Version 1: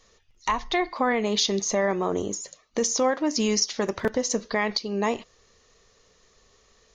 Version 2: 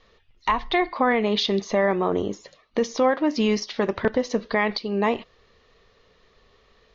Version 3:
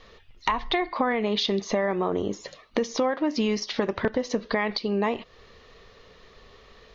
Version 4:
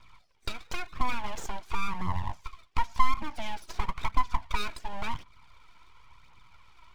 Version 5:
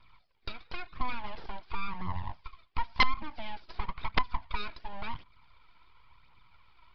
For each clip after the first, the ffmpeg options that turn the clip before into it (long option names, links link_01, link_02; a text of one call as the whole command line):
ffmpeg -i in.wav -af "lowpass=frequency=4000:width=0.5412,lowpass=frequency=4000:width=1.3066,volume=3dB" out.wav
ffmpeg -i in.wav -af "acompressor=threshold=-32dB:ratio=3,volume=7dB" out.wav
ffmpeg -i in.wav -filter_complex "[0:a]asplit=3[link_01][link_02][link_03];[link_01]bandpass=frequency=530:width_type=q:width=8,volume=0dB[link_04];[link_02]bandpass=frequency=1840:width_type=q:width=8,volume=-6dB[link_05];[link_03]bandpass=frequency=2480:width_type=q:width=8,volume=-9dB[link_06];[link_04][link_05][link_06]amix=inputs=3:normalize=0,aeval=exprs='abs(val(0))':channel_layout=same,aphaser=in_gain=1:out_gain=1:delay=3.2:decay=0.43:speed=0.95:type=triangular,volume=6dB" out.wav
ffmpeg -i in.wav -af "aeval=exprs='(mod(3.55*val(0)+1,2)-1)/3.55':channel_layout=same,aresample=11025,aresample=44100,volume=-4.5dB" out.wav